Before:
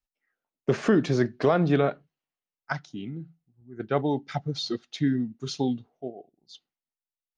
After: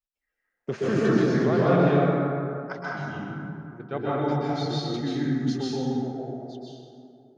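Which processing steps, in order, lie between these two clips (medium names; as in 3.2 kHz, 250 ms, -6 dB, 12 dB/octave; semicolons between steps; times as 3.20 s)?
plate-style reverb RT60 2.7 s, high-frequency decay 0.4×, pre-delay 115 ms, DRR -8.5 dB; trim -7 dB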